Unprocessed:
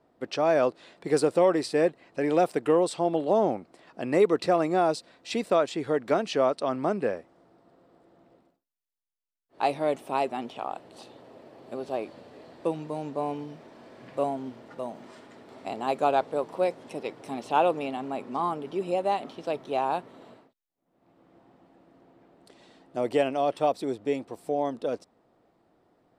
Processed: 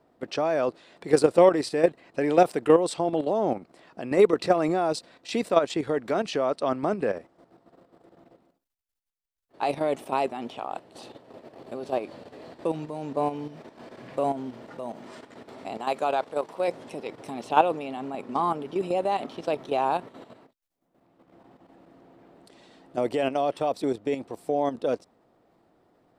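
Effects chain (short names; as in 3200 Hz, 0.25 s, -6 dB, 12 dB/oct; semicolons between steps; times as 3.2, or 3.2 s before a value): 15.77–16.68 low shelf 440 Hz -8 dB; level quantiser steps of 10 dB; gain +6 dB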